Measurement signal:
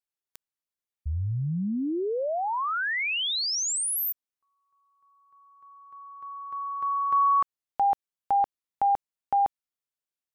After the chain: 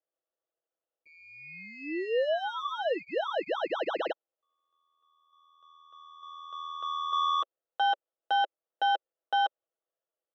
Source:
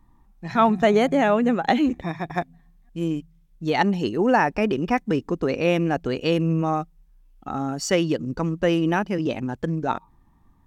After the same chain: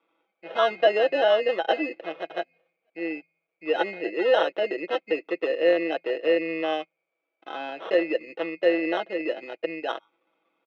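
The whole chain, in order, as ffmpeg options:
ffmpeg -i in.wav -af "acrusher=samples=19:mix=1:aa=0.000001,highpass=frequency=380:width=0.5412,highpass=frequency=380:width=1.3066,equalizer=frequency=390:width_type=q:width=4:gain=3,equalizer=frequency=570:width_type=q:width=4:gain=8,equalizer=frequency=970:width_type=q:width=4:gain=-8,equalizer=frequency=1600:width_type=q:width=4:gain=-4,equalizer=frequency=2500:width_type=q:width=4:gain=6,lowpass=frequency=3100:width=0.5412,lowpass=frequency=3100:width=1.3066,aecho=1:1:6.1:0.61,volume=-4dB" out.wav

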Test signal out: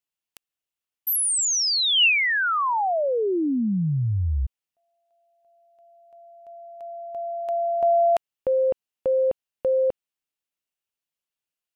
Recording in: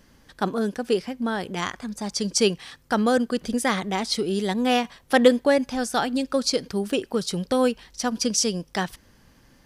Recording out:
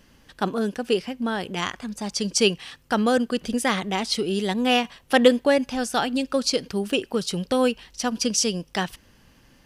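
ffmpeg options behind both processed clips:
ffmpeg -i in.wav -af "equalizer=frequency=2800:width=4.1:gain=7" out.wav

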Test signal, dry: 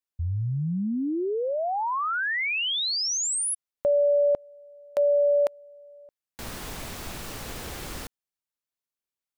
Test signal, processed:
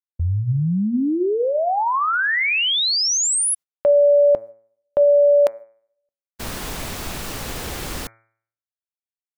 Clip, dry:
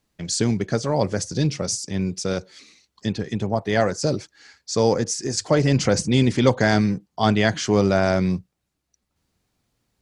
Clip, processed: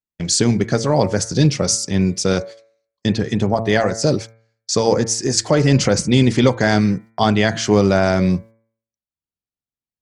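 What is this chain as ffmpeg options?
ffmpeg -i in.wav -af "agate=range=-34dB:threshold=-41dB:ratio=16:release=234:detection=peak,alimiter=limit=-10dB:level=0:latency=1:release=493,bandreject=frequency=112.6:width_type=h:width=4,bandreject=frequency=225.2:width_type=h:width=4,bandreject=frequency=337.8:width_type=h:width=4,bandreject=frequency=450.4:width_type=h:width=4,bandreject=frequency=563:width_type=h:width=4,bandreject=frequency=675.6:width_type=h:width=4,bandreject=frequency=788.2:width_type=h:width=4,bandreject=frequency=900.8:width_type=h:width=4,bandreject=frequency=1013.4:width_type=h:width=4,bandreject=frequency=1126:width_type=h:width=4,bandreject=frequency=1238.6:width_type=h:width=4,bandreject=frequency=1351.2:width_type=h:width=4,bandreject=frequency=1463.8:width_type=h:width=4,bandreject=frequency=1576.4:width_type=h:width=4,bandreject=frequency=1689:width_type=h:width=4,bandreject=frequency=1801.6:width_type=h:width=4,bandreject=frequency=1914.2:width_type=h:width=4,bandreject=frequency=2026.8:width_type=h:width=4,bandreject=frequency=2139.4:width_type=h:width=4,bandreject=frequency=2252:width_type=h:width=4,bandreject=frequency=2364.6:width_type=h:width=4,volume=7.5dB" out.wav

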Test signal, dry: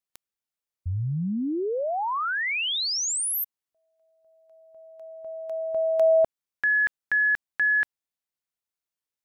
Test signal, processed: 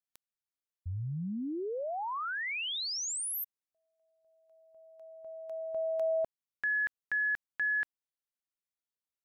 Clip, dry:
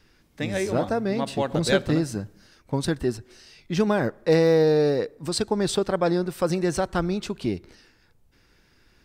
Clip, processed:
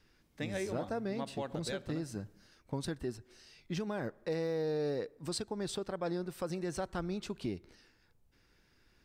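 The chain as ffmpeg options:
ffmpeg -i in.wav -af "alimiter=limit=-18dB:level=0:latency=1:release=339,volume=-8.5dB" out.wav

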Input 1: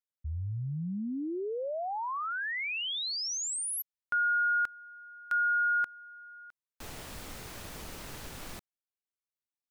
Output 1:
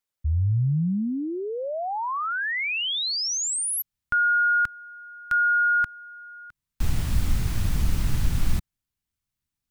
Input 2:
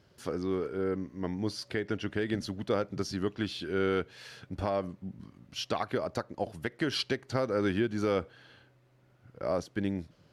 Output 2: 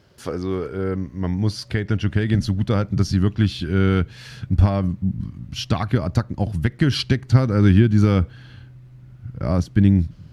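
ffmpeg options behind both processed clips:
ffmpeg -i in.wav -af "acontrast=25,asubboost=boost=10.5:cutoff=150,volume=2.5dB" out.wav

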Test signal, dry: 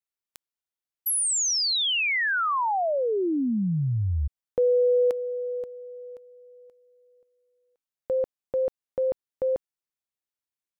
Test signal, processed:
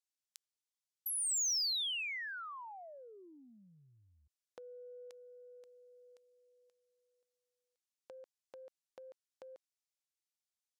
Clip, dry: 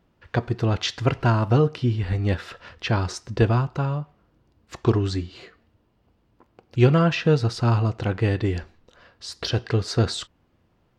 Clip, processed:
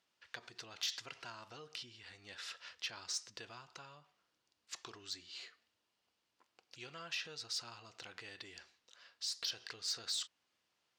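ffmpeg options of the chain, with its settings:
ffmpeg -i in.wav -af "acompressor=threshold=-41dB:ratio=2:attack=21:release=45:detection=peak,bandpass=frequency=6100:width_type=q:width=0.95:csg=0,asoftclip=type=tanh:threshold=-30dB,volume=1.5dB" out.wav

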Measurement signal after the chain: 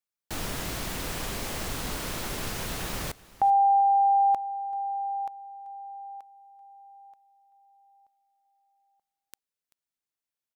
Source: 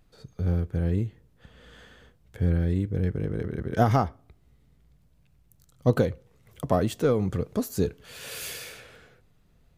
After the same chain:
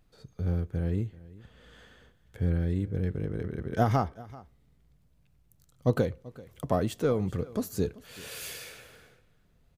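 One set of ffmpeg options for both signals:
ffmpeg -i in.wav -af "aecho=1:1:386:0.0944,volume=-3.5dB" out.wav

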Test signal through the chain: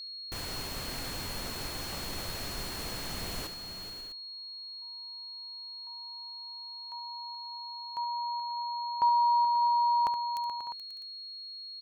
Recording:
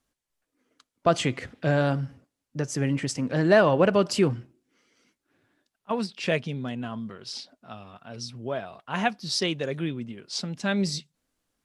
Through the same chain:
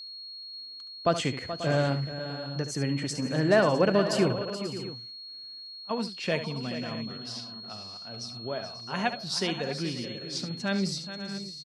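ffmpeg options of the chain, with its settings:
ffmpeg -i in.wav -filter_complex "[0:a]aeval=exprs='val(0)+0.0158*sin(2*PI*4300*n/s)':channel_layout=same,asplit=2[link_01][link_02];[link_02]aecho=0:1:71|428|537|602|652:0.282|0.266|0.2|0.126|0.158[link_03];[link_01][link_03]amix=inputs=2:normalize=0,volume=-3.5dB" out.wav

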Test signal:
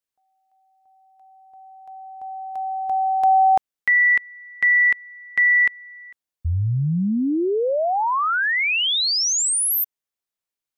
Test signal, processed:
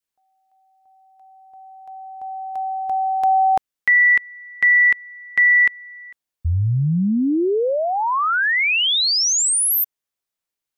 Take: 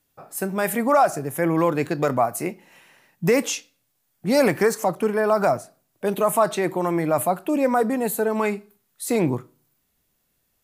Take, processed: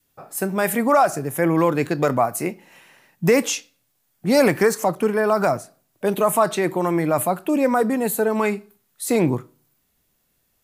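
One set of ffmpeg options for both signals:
ffmpeg -i in.wav -af "adynamicequalizer=threshold=0.0316:dfrequency=700:dqfactor=1.5:tfrequency=700:tqfactor=1.5:attack=5:release=100:ratio=0.375:range=2:mode=cutabove:tftype=bell,volume=2.5dB" out.wav

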